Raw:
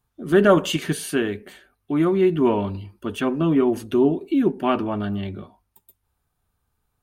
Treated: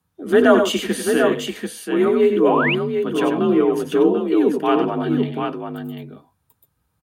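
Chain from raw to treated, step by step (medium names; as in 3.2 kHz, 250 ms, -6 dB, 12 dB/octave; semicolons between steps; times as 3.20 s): multi-tap echo 85/90/99/739 ms -19/-11/-8.5/-5.5 dB; frequency shift +47 Hz; painted sound rise, 2.36–2.75 s, 310–3100 Hz -22 dBFS; trim +1.5 dB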